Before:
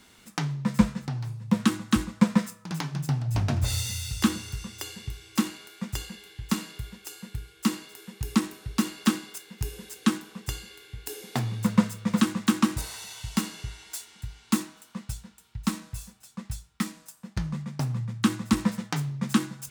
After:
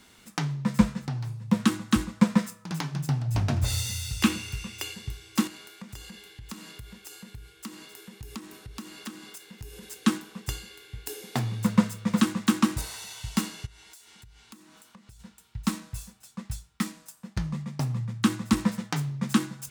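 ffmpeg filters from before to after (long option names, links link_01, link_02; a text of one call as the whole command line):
ffmpeg -i in.wav -filter_complex "[0:a]asettb=1/sr,asplit=3[link_01][link_02][link_03];[link_01]atrim=end=4.204[link_04];[link_02]atrim=start=4.2:end=4.94,asetpts=PTS-STARTPTS,afade=type=in:duration=0.004:curve=qsin,afade=type=out:start_time=0.736:duration=0.004:curve=qsin,equalizer=frequency=2500:width_type=o:width=0.42:gain=9.5[link_05];[link_03]atrim=start=4.936[link_06];[link_04][link_05]acrossfade=duration=0.004:curve1=hsin:curve2=qsin[link_07];[link_07][link_06]acrossfade=duration=0.004:curve1=qsin:curve2=hsin,asettb=1/sr,asplit=3[link_08][link_09][link_10];[link_08]atrim=end=5.474[link_11];[link_09]atrim=start=5.47:end=9.83,asetpts=PTS-STARTPTS,afade=type=in:duration=0.004:curve=qsin,afade=type=out:start_time=4.356:duration=0.004:curve=qsin,acompressor=threshold=-40dB:ratio=3:attack=3.2:release=140:knee=1:detection=peak[link_12];[link_10]atrim=start=9.826[link_13];[link_11][link_12]acrossfade=duration=0.004:curve1=hsin:curve2=qsin[link_14];[link_14][link_13]acrossfade=duration=0.004:curve1=qsin:curve2=hsin,asplit=3[link_15][link_16][link_17];[link_15]afade=type=out:start_time=13.65:duration=0.02[link_18];[link_16]acompressor=threshold=-48dB:ratio=6:attack=3.2:release=140:knee=1:detection=peak,afade=type=in:start_time=13.65:duration=0.02,afade=type=out:start_time=15.19:duration=0.02[link_19];[link_17]afade=type=in:start_time=15.19:duration=0.02[link_20];[link_18][link_19][link_20]amix=inputs=3:normalize=0,asettb=1/sr,asplit=3[link_21][link_22][link_23];[link_21]atrim=end=17.454[link_24];[link_22]atrim=start=17.45:end=18.01,asetpts=PTS-STARTPTS,afade=type=in:duration=0.004:curve=qsin,afade=type=out:start_time=0.556:duration=0.004:curve=qsin,bandreject=frequency=1500:width=12[link_25];[link_23]atrim=start=18.006[link_26];[link_24][link_25]acrossfade=duration=0.004:curve1=hsin:curve2=qsin[link_27];[link_27][link_26]acrossfade=duration=0.004:curve1=qsin:curve2=hsin" out.wav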